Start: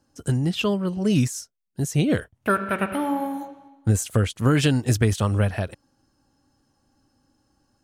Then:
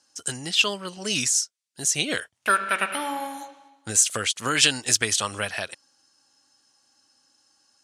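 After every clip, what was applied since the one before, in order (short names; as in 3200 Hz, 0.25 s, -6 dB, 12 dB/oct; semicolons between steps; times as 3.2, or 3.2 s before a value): weighting filter ITU-R 468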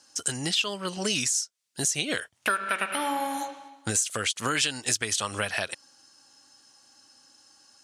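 compressor 4:1, threshold -32 dBFS, peak gain reduction 15.5 dB; gain +6.5 dB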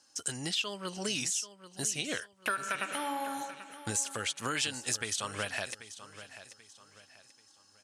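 feedback echo 0.786 s, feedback 35%, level -14 dB; gain -6.5 dB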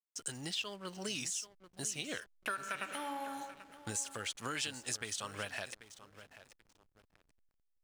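backlash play -45 dBFS; gain -5.5 dB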